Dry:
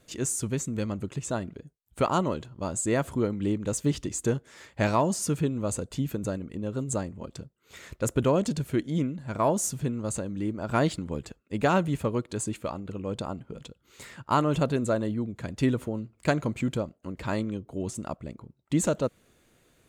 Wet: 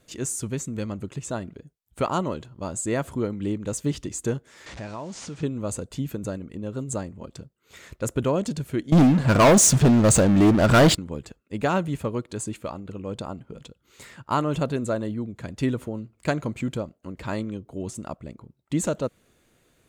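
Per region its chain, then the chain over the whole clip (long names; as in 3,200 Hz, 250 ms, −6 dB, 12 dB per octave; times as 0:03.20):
0:04.66–0:05.43: linear delta modulator 64 kbit/s, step −34.5 dBFS + low-pass filter 7,300 Hz 24 dB per octave + downward compressor 2.5 to 1, threshold −36 dBFS
0:08.92–0:10.95: low-pass filter 8,300 Hz + leveller curve on the samples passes 5
whole clip: no processing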